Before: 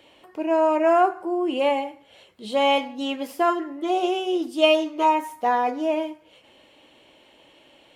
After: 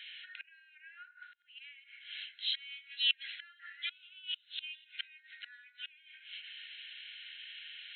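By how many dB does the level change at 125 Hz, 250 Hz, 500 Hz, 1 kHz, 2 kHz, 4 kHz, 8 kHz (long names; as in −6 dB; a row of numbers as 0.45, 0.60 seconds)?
can't be measured, below −40 dB, below −40 dB, below −40 dB, −10.5 dB, −4.5 dB, below −35 dB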